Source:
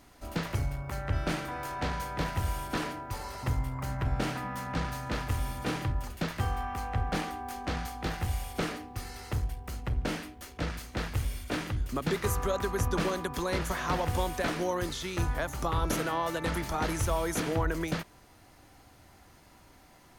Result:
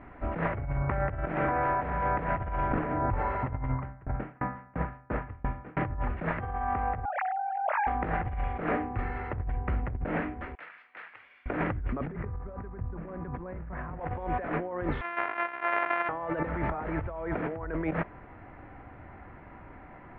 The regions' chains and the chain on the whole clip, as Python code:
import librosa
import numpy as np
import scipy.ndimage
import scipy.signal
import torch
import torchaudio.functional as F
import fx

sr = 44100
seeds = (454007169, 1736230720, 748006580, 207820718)

y = fx.chain(x, sr, fx.low_shelf(hz=170.0, db=9.5),
    fx.over_compress(threshold_db=-33.0, ratio=-1.0),
    fx.lowpass(hz=3200.0, slope=6), at=(2.71, 3.19))
y = fx.chain(y, sr, fx.air_absorb(metres=170.0),
    fx.tremolo_decay(direction='decaying', hz=2.9, depth_db=34), at=(3.72, 5.77))
y = fx.chain(y, sr, fx.sine_speech(),
    fx.highpass(hz=470.0, slope=12), at=(7.05, 7.87))
y = fx.chain(y, sr, fx.highpass(hz=730.0, slope=6),
    fx.differentiator(), at=(10.55, 11.46))
y = fx.chain(y, sr, fx.bass_treble(bass_db=13, treble_db=-14),
    fx.over_compress(threshold_db=-24.0, ratio=-1.0), at=(12.07, 14.0))
y = fx.chain(y, sr, fx.sample_sort(block=128),
    fx.highpass(hz=1100.0, slope=12),
    fx.high_shelf(hz=8500.0, db=-4.0), at=(15.01, 16.09))
y = scipy.signal.sosfilt(scipy.signal.butter(6, 2200.0, 'lowpass', fs=sr, output='sos'), y)
y = fx.dynamic_eq(y, sr, hz=620.0, q=1.4, threshold_db=-44.0, ratio=4.0, max_db=5)
y = fx.over_compress(y, sr, threshold_db=-36.0, ratio=-1.0)
y = y * librosa.db_to_amplitude(4.0)